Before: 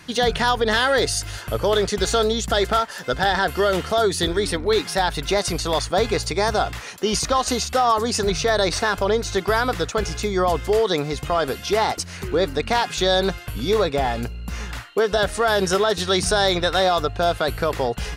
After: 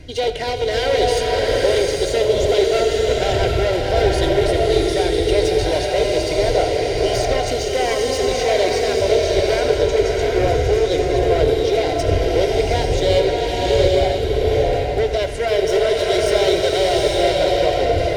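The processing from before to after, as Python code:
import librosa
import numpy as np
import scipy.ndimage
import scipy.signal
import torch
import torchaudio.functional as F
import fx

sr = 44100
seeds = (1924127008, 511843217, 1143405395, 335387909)

p1 = np.minimum(x, 2.0 * 10.0 ** (-19.5 / 20.0) - x)
p2 = fx.dmg_wind(p1, sr, seeds[0], corner_hz=92.0, level_db=-25.0)
p3 = fx.lowpass(p2, sr, hz=1900.0, slope=6)
p4 = fx.low_shelf(p3, sr, hz=470.0, db=-4.0)
p5 = fx.fixed_phaser(p4, sr, hz=490.0, stages=4)
p6 = fx.notch_comb(p5, sr, f0_hz=870.0)
p7 = p6 + fx.echo_single(p6, sr, ms=84, db=-13.5, dry=0)
p8 = fx.rev_bloom(p7, sr, seeds[1], attack_ms=840, drr_db=-2.0)
y = p8 * librosa.db_to_amplitude(6.5)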